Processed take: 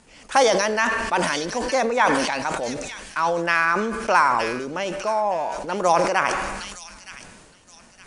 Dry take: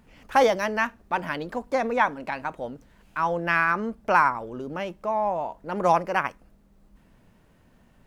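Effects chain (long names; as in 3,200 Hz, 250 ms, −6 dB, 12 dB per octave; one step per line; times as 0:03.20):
Butterworth low-pass 10,000 Hz 96 dB per octave
bass and treble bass −8 dB, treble +13 dB
in parallel at −2 dB: downward compressor, threshold −29 dBFS, peak gain reduction 14.5 dB
on the sum: delay with a high-pass on its return 916 ms, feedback 38%, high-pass 3,300 Hz, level −6.5 dB
on a send at −18 dB: convolution reverb RT60 0.85 s, pre-delay 77 ms
on the sum: level that may fall only so fast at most 34 dB per second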